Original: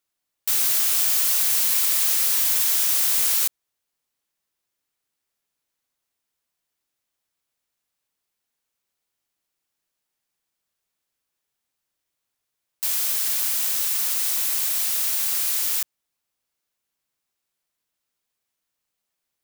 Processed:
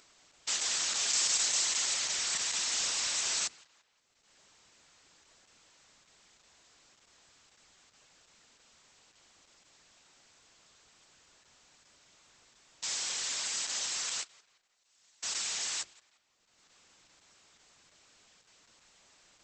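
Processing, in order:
mains-hum notches 50/100/150/200/250/300/350/400/450 Hz
0:01.08–0:02.18: parametric band 8,100 Hz +6 dB → −1.5 dB 1.7 octaves
0:14.23–0:15.23: noise gate −16 dBFS, range −55 dB
upward compression, threshold −34 dBFS
tape delay 174 ms, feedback 50%, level −21 dB, low-pass 4,200 Hz
level −3.5 dB
Opus 10 kbit/s 48,000 Hz

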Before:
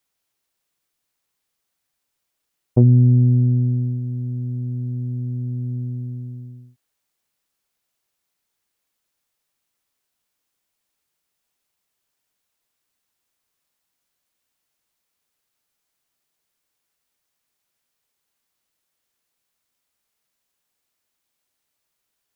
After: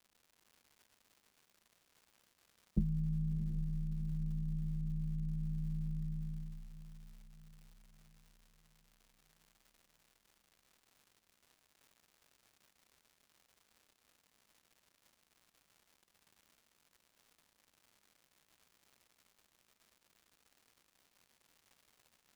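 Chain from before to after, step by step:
downward compressor, threshold −27 dBFS, peak gain reduction 16.5 dB
pair of resonant band-passes 320 Hz, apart 1.2 octaves
frequency shifter −280 Hz
surface crackle 260 per second −62 dBFS
feedback delay with all-pass diffusion 705 ms, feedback 47%, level −11.5 dB
level +8 dB

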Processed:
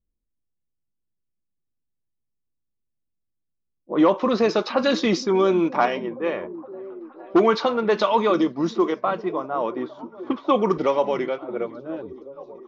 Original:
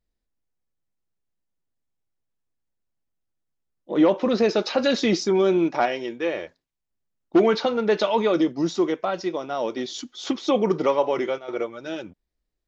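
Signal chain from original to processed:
low-pass that shuts in the quiet parts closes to 360 Hz, open at −16 dBFS
parametric band 1,100 Hz +10 dB 0.43 octaves, from 0:10.77 67 Hz
echo through a band-pass that steps 469 ms, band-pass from 160 Hz, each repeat 0.7 octaves, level −11.5 dB

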